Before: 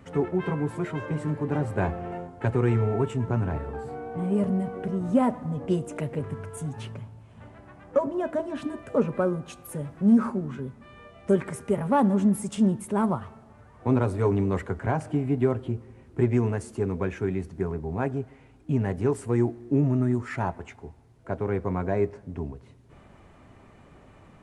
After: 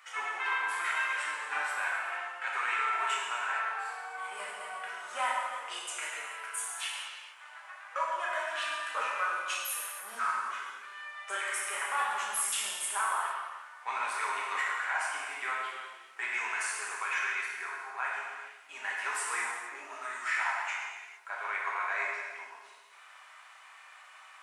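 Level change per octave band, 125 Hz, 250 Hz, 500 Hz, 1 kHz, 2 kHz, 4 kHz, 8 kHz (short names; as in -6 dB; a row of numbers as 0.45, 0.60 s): under -40 dB, under -35 dB, -19.0 dB, +1.0 dB, +10.0 dB, n/a, +9.5 dB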